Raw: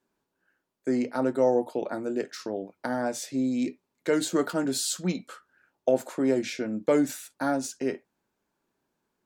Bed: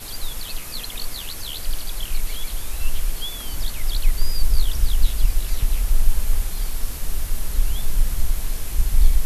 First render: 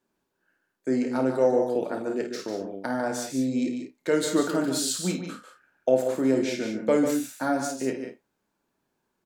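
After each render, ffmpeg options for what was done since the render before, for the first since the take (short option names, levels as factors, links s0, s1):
-filter_complex "[0:a]asplit=2[s0][s1];[s1]adelay=31,volume=0.282[s2];[s0][s2]amix=inputs=2:normalize=0,asplit=2[s3][s4];[s4]aecho=0:1:52.48|145.8|186.6:0.355|0.398|0.282[s5];[s3][s5]amix=inputs=2:normalize=0"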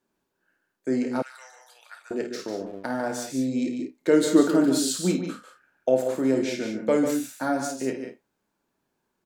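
-filter_complex "[0:a]asettb=1/sr,asplit=3[s0][s1][s2];[s0]atrim=end=1.224[s3];[s1]atrim=start=1.22:end=2.11,asetpts=PTS-STARTPTS,afade=t=in:d=0.004:c=qsin,afade=t=out:st=0.886:d=0.004:c=qsin,highpass=f=1500:w=0.5412,highpass=f=1500:w=1.3066[s4];[s2]atrim=start=2.106[s5];[s3][s4]acrossfade=d=0.004:c1=hsin:c2=qsin[s6];[s6][s5]acrossfade=d=0.004:c1=qsin:c2=hsin,asettb=1/sr,asplit=3[s7][s8][s9];[s7]atrim=end=2.664[s10];[s8]atrim=start=2.66:end=3.28,asetpts=PTS-STARTPTS,afade=t=in:d=0.004:c=qsin,afade=t=out:st=0.616:d=0.004:c=qsin,aeval=exprs='sgn(val(0))*max(abs(val(0))-0.00266,0)':c=same[s11];[s9]atrim=start=3.276[s12];[s10][s11]acrossfade=d=0.004:c1=hsin:c2=qsin[s13];[s13][s12]acrossfade=d=0.004:c1=qsin:c2=hsin,asettb=1/sr,asplit=3[s14][s15][s16];[s14]atrim=end=3.794[s17];[s15]atrim=start=3.79:end=5.32,asetpts=PTS-STARTPTS,afade=t=in:d=0.004:c=qsin,afade=t=out:st=1.526:d=0.004:c=qsin,equalizer=f=310:t=o:w=1.3:g=7[s18];[s16]atrim=start=5.316[s19];[s17][s18]acrossfade=d=0.004:c1=hsin:c2=qsin[s20];[s20][s19]acrossfade=d=0.004:c1=qsin:c2=hsin"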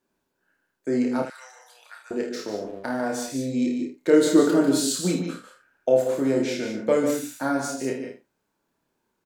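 -af "aecho=1:1:29|77:0.562|0.251"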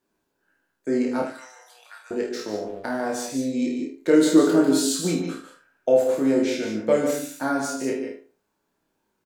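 -filter_complex "[0:a]asplit=2[s0][s1];[s1]adelay=19,volume=0.447[s2];[s0][s2]amix=inputs=2:normalize=0,asplit=2[s3][s4];[s4]adelay=74,lowpass=f=2000:p=1,volume=0.266,asplit=2[s5][s6];[s6]adelay=74,lowpass=f=2000:p=1,volume=0.29,asplit=2[s7][s8];[s8]adelay=74,lowpass=f=2000:p=1,volume=0.29[s9];[s3][s5][s7][s9]amix=inputs=4:normalize=0"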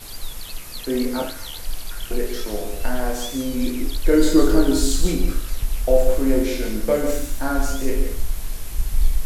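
-filter_complex "[1:a]volume=0.708[s0];[0:a][s0]amix=inputs=2:normalize=0"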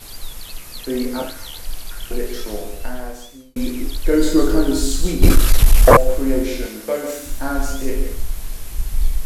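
-filter_complex "[0:a]asettb=1/sr,asplit=3[s0][s1][s2];[s0]atrim=end=5.224[s3];[s1]atrim=start=5.22:end=5.97,asetpts=PTS-STARTPTS,afade=t=in:d=0.004:c=qsin,afade=t=out:st=0.746:d=0.004:c=qsin,aeval=exprs='0.75*sin(PI/2*3.55*val(0)/0.75)':c=same[s4];[s2]atrim=start=5.966[s5];[s3][s4]acrossfade=d=0.004:c1=hsin:c2=qsin[s6];[s6][s5]acrossfade=d=0.004:c1=qsin:c2=hsin,asettb=1/sr,asplit=3[s7][s8][s9];[s7]atrim=end=6.664[s10];[s8]atrim=start=6.66:end=7.26,asetpts=PTS-STARTPTS,afade=t=in:d=0.004:c=qsin,afade=t=out:st=0.596:d=0.004:c=qsin,highpass=f=450:p=1[s11];[s9]atrim=start=7.256[s12];[s10][s11]acrossfade=d=0.004:c1=hsin:c2=qsin[s13];[s13][s12]acrossfade=d=0.004:c1=qsin:c2=hsin,asplit=2[s14][s15];[s14]atrim=end=3.56,asetpts=PTS-STARTPTS,afade=t=out:st=2.51:d=1.05[s16];[s15]atrim=start=3.56,asetpts=PTS-STARTPTS,afade=t=in:d=0.004:c=hsin[s17];[s16][s17]concat=n=2:v=0:a=1"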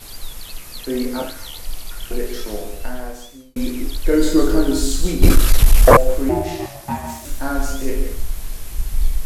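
-filter_complex "[0:a]asettb=1/sr,asplit=3[s0][s1][s2];[s0]atrim=end=1.494[s3];[s1]atrim=start=1.49:end=2.02,asetpts=PTS-STARTPTS,afade=t=in:d=0.004:c=qsin,afade=t=out:st=0.526:d=0.004:c=qsin,bandreject=f=1600:w=12[s4];[s2]atrim=start=2.016[s5];[s3][s4]acrossfade=d=0.004:c1=hsin:c2=qsin[s6];[s6][s5]acrossfade=d=0.004:c1=qsin:c2=hsin,asettb=1/sr,asplit=3[s7][s8][s9];[s7]atrim=end=6.294[s10];[s8]atrim=start=6.29:end=7.25,asetpts=PTS-STARTPTS,afade=t=in:d=0.004:c=qsin,afade=t=out:st=0.956:d=0.004:c=qsin,aeval=exprs='val(0)*sin(2*PI*350*n/s)':c=same[s11];[s9]atrim=start=7.246[s12];[s10][s11]acrossfade=d=0.004:c1=hsin:c2=qsin[s13];[s13][s12]acrossfade=d=0.004:c1=qsin:c2=hsin"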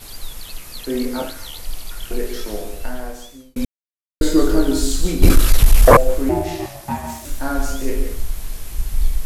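-filter_complex "[0:a]asplit=3[s0][s1][s2];[s0]atrim=end=3.65,asetpts=PTS-STARTPTS,afade=t=out:st=3.646:d=0.004:c=hsin[s3];[s1]atrim=start=3.65:end=4.21,asetpts=PTS-STARTPTS,volume=0[s4];[s2]atrim=start=4.21,asetpts=PTS-STARTPTS,afade=t=in:d=0.004:c=hsin[s5];[s3][s4][s5]concat=n=3:v=0:a=1"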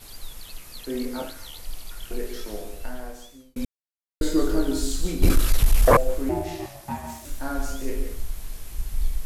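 -af "volume=0.447"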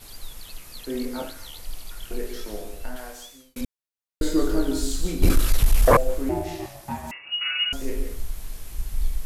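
-filter_complex "[0:a]asettb=1/sr,asplit=3[s0][s1][s2];[s0]atrim=end=2.964[s3];[s1]atrim=start=2.96:end=3.61,asetpts=PTS-STARTPTS,afade=t=in:d=0.004:c=qsin,afade=t=out:st=0.646:d=0.004:c=qsin,tiltshelf=f=670:g=-6[s4];[s2]atrim=start=3.606[s5];[s3][s4]acrossfade=d=0.004:c1=hsin:c2=qsin[s6];[s6][s5]acrossfade=d=0.004:c1=qsin:c2=hsin,asettb=1/sr,asplit=3[s7][s8][s9];[s7]atrim=end=7.114[s10];[s8]atrim=start=7.11:end=7.73,asetpts=PTS-STARTPTS,afade=t=in:d=0.004:c=qsin,afade=t=out:st=0.616:d=0.004:c=qsin,lowpass=f=2500:t=q:w=0.5098,lowpass=f=2500:t=q:w=0.6013,lowpass=f=2500:t=q:w=0.9,lowpass=f=2500:t=q:w=2.563,afreqshift=-2900[s11];[s9]atrim=start=7.726[s12];[s10][s11]acrossfade=d=0.004:c1=hsin:c2=qsin[s13];[s13][s12]acrossfade=d=0.004:c1=qsin:c2=hsin"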